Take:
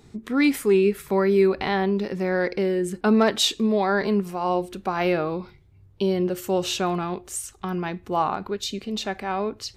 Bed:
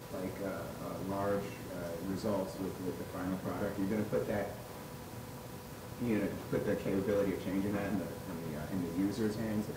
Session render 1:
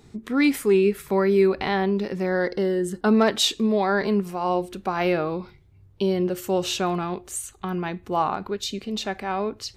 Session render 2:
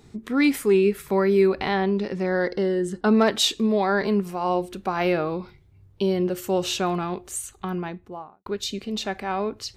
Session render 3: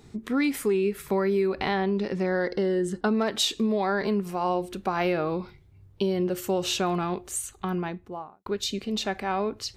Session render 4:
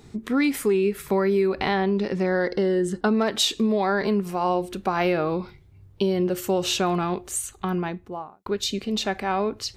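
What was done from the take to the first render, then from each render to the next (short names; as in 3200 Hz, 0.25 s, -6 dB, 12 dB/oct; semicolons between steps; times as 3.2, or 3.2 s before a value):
2.26–3.06 Butterworth band-stop 2400 Hz, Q 3.5; 7.31–8.03 Butterworth band-stop 5300 Hz, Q 5.4
1.74–3.18 LPF 8300 Hz; 7.59–8.46 studio fade out
compressor, threshold -21 dBFS, peak gain reduction 7.5 dB
gain +3 dB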